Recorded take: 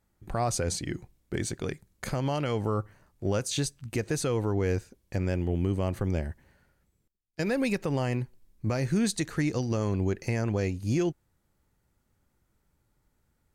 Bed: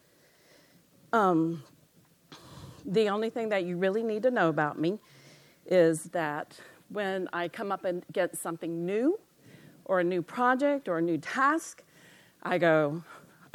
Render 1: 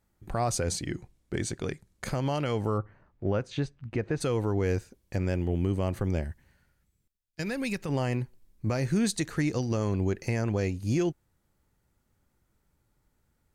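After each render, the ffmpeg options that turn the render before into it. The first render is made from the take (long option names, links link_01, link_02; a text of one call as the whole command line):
ffmpeg -i in.wav -filter_complex "[0:a]asettb=1/sr,asplit=3[link_01][link_02][link_03];[link_01]atrim=end=0.864[link_04];[link_02]atrim=start=0.86:end=2.07,asetpts=PTS-STARTPTS,afade=type=in:duration=0.004:curve=qsin,afade=type=out:start_time=1.206:duration=0.004:curve=qsin,lowpass=11000[link_05];[link_03]atrim=start=2.066[link_06];[link_04][link_05]acrossfade=duration=0.004:curve1=hsin:curve2=qsin[link_07];[link_07][link_06]acrossfade=duration=0.004:curve1=qsin:curve2=hsin,asplit=3[link_08][link_09][link_10];[link_08]afade=type=out:start_time=2.77:duration=0.02[link_11];[link_09]lowpass=2200,afade=type=in:start_time=2.77:duration=0.02,afade=type=out:start_time=4.2:duration=0.02[link_12];[link_10]afade=type=in:start_time=4.2:duration=0.02[link_13];[link_11][link_12][link_13]amix=inputs=3:normalize=0,asettb=1/sr,asplit=3[link_14][link_15][link_16];[link_14]atrim=end=6.244[link_17];[link_15]atrim=start=6.24:end=7.89,asetpts=PTS-STARTPTS,afade=type=in:duration=0.004:curve=qsin,afade=type=out:start_time=1.646:duration=0.004:curve=qsin,equalizer=frequency=530:width=0.51:gain=-7[link_18];[link_16]atrim=start=7.886[link_19];[link_17][link_18]acrossfade=duration=0.004:curve1=hsin:curve2=qsin[link_20];[link_20][link_19]acrossfade=duration=0.004:curve1=qsin:curve2=hsin" out.wav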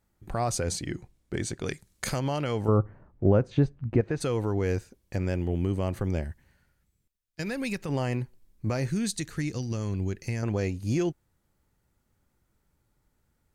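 ffmpeg -i in.wav -filter_complex "[0:a]asplit=3[link_01][link_02][link_03];[link_01]afade=type=out:start_time=1.65:duration=0.02[link_04];[link_02]highshelf=frequency=2200:gain=9.5,afade=type=in:start_time=1.65:duration=0.02,afade=type=out:start_time=2.18:duration=0.02[link_05];[link_03]afade=type=in:start_time=2.18:duration=0.02[link_06];[link_04][link_05][link_06]amix=inputs=3:normalize=0,asettb=1/sr,asplit=3[link_07][link_08][link_09];[link_07]atrim=end=2.684[link_10];[link_08]atrim=start=2.68:end=4.01,asetpts=PTS-STARTPTS,afade=type=in:duration=0.004:curve=qsin,afade=type=out:start_time=1.326:duration=0.004:curve=qsin,tiltshelf=frequency=1500:gain=8[link_11];[link_09]atrim=start=4.006[link_12];[link_10][link_11]acrossfade=duration=0.004:curve1=hsin:curve2=qsin[link_13];[link_13][link_12]acrossfade=duration=0.004:curve1=qsin:curve2=hsin,asettb=1/sr,asplit=3[link_14][link_15][link_16];[link_14]atrim=end=8.904[link_17];[link_15]atrim=start=8.9:end=10.43,asetpts=PTS-STARTPTS,afade=type=in:duration=0.004:curve=qsin,afade=type=out:start_time=1.526:duration=0.004:curve=qsin,equalizer=frequency=710:width_type=o:width=2.6:gain=-8.5[link_18];[link_16]atrim=start=10.426[link_19];[link_17][link_18]acrossfade=duration=0.004:curve1=hsin:curve2=qsin[link_20];[link_20][link_19]acrossfade=duration=0.004:curve1=qsin:curve2=hsin" out.wav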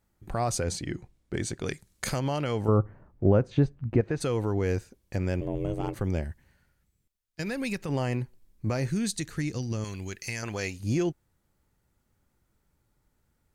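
ffmpeg -i in.wav -filter_complex "[0:a]asettb=1/sr,asplit=3[link_01][link_02][link_03];[link_01]atrim=end=0.644[link_04];[link_02]atrim=start=0.64:end=1.35,asetpts=PTS-STARTPTS,afade=type=in:duration=0.004:curve=qsin,afade=type=out:start_time=0.706:duration=0.004:curve=qsin,highshelf=frequency=7200:gain=-5.5[link_05];[link_03]atrim=start=1.346[link_06];[link_04][link_05]acrossfade=duration=0.004:curve1=hsin:curve2=qsin[link_07];[link_07][link_06]acrossfade=duration=0.004:curve1=qsin:curve2=hsin,asplit=3[link_08][link_09][link_10];[link_08]afade=type=out:start_time=5.4:duration=0.02[link_11];[link_09]aeval=exprs='val(0)*sin(2*PI*220*n/s)':channel_layout=same,afade=type=in:start_time=5.4:duration=0.02,afade=type=out:start_time=5.94:duration=0.02[link_12];[link_10]afade=type=in:start_time=5.94:duration=0.02[link_13];[link_11][link_12][link_13]amix=inputs=3:normalize=0,asettb=1/sr,asplit=3[link_14][link_15][link_16];[link_14]atrim=end=9.844[link_17];[link_15]atrim=start=9.84:end=10.8,asetpts=PTS-STARTPTS,afade=type=in:duration=0.004:curve=qsin,afade=type=out:start_time=0.956:duration=0.004:curve=qsin,tiltshelf=frequency=900:gain=-8.5[link_18];[link_16]atrim=start=10.796[link_19];[link_17][link_18]acrossfade=duration=0.004:curve1=hsin:curve2=qsin[link_20];[link_20][link_19]acrossfade=duration=0.004:curve1=qsin:curve2=hsin" out.wav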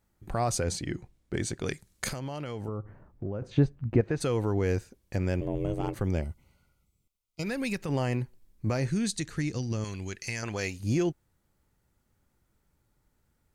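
ffmpeg -i in.wav -filter_complex "[0:a]asettb=1/sr,asplit=3[link_01][link_02][link_03];[link_01]atrim=end=2.084[link_04];[link_02]atrim=start=2.08:end=3.42,asetpts=PTS-STARTPTS,afade=type=in:duration=0.004:curve=qsin,afade=type=out:start_time=1.336:duration=0.004:curve=qsin,acompressor=threshold=-32dB:ratio=4:attack=3.2:release=140:knee=1:detection=peak[link_05];[link_03]atrim=start=3.416[link_06];[link_04][link_05]acrossfade=duration=0.004:curve1=hsin:curve2=qsin[link_07];[link_07][link_06]acrossfade=duration=0.004:curve1=qsin:curve2=hsin,asettb=1/sr,asplit=3[link_08][link_09][link_10];[link_08]atrim=end=6.214[link_11];[link_09]atrim=start=6.21:end=7.44,asetpts=PTS-STARTPTS,afade=type=in:duration=0.004:curve=qsin,afade=type=out:start_time=1.226:duration=0.004:curve=qsin,asuperstop=centerf=1700:order=12:qfactor=3.6[link_12];[link_10]atrim=start=7.436[link_13];[link_11][link_12]acrossfade=duration=0.004:curve1=hsin:curve2=qsin[link_14];[link_14][link_13]acrossfade=duration=0.004:curve1=qsin:curve2=hsin,asettb=1/sr,asplit=3[link_15][link_16][link_17];[link_15]atrim=end=8.784[link_18];[link_16]atrim=start=8.78:end=10.59,asetpts=PTS-STARTPTS,afade=type=in:duration=0.004:curve=qsin,afade=type=out:start_time=1.806:duration=0.004:curve=qsin,lowpass=10000[link_19];[link_17]atrim=start=10.586[link_20];[link_18][link_19]acrossfade=duration=0.004:curve1=hsin:curve2=qsin[link_21];[link_21][link_20]acrossfade=duration=0.004:curve1=qsin:curve2=hsin" out.wav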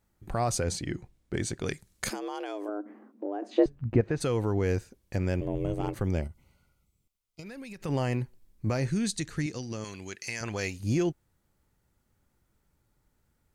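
ffmpeg -i in.wav -filter_complex "[0:a]asettb=1/sr,asplit=3[link_01][link_02][link_03];[link_01]atrim=end=2.104[link_04];[link_02]atrim=start=2.1:end=3.66,asetpts=PTS-STARTPTS,afade=type=in:duration=0.004:curve=qsin,afade=type=out:start_time=1.556:duration=0.004:curve=qsin,afreqshift=200[link_05];[link_03]atrim=start=3.656[link_06];[link_04][link_05]acrossfade=duration=0.004:curve1=hsin:curve2=qsin[link_07];[link_07][link_06]acrossfade=duration=0.004:curve1=qsin:curve2=hsin,asettb=1/sr,asplit=3[link_08][link_09][link_10];[link_08]atrim=end=6.274[link_11];[link_09]atrim=start=6.27:end=7.82,asetpts=PTS-STARTPTS,afade=type=in:duration=0.004:curve=qsin,afade=type=out:start_time=1.546:duration=0.004:curve=qsin,acompressor=threshold=-40dB:ratio=6:attack=3.2:release=140:knee=1:detection=peak[link_12];[link_10]atrim=start=7.816[link_13];[link_11][link_12]acrossfade=duration=0.004:curve1=hsin:curve2=qsin[link_14];[link_14][link_13]acrossfade=duration=0.004:curve1=qsin:curve2=hsin,asettb=1/sr,asplit=3[link_15][link_16][link_17];[link_15]atrim=end=9.464[link_18];[link_16]atrim=start=9.46:end=10.41,asetpts=PTS-STARTPTS,afade=type=in:duration=0.004:curve=qsin,afade=type=out:start_time=0.946:duration=0.004:curve=qsin,highpass=frequency=270:poles=1[link_19];[link_17]atrim=start=10.406[link_20];[link_18][link_19]acrossfade=duration=0.004:curve1=hsin:curve2=qsin[link_21];[link_21][link_20]acrossfade=duration=0.004:curve1=qsin:curve2=hsin" out.wav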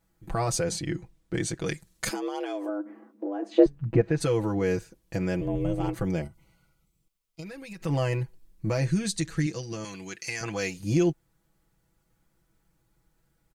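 ffmpeg -i in.wav -af "aecho=1:1:6.1:0.83" out.wav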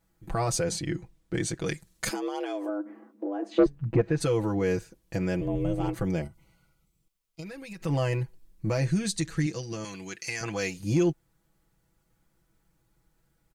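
ffmpeg -i in.wav -af "asoftclip=type=tanh:threshold=-12dB" out.wav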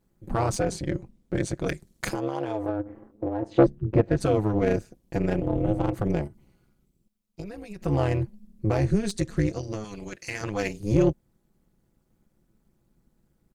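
ffmpeg -i in.wav -filter_complex "[0:a]asplit=2[link_01][link_02];[link_02]adynamicsmooth=sensitivity=3.5:basefreq=910,volume=2dB[link_03];[link_01][link_03]amix=inputs=2:normalize=0,tremolo=f=210:d=0.889" out.wav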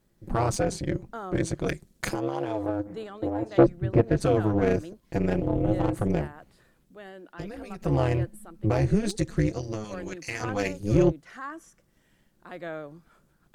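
ffmpeg -i in.wav -i bed.wav -filter_complex "[1:a]volume=-13dB[link_01];[0:a][link_01]amix=inputs=2:normalize=0" out.wav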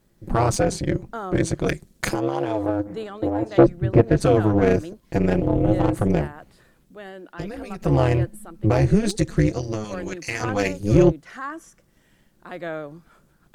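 ffmpeg -i in.wav -af "volume=5.5dB,alimiter=limit=-2dB:level=0:latency=1" out.wav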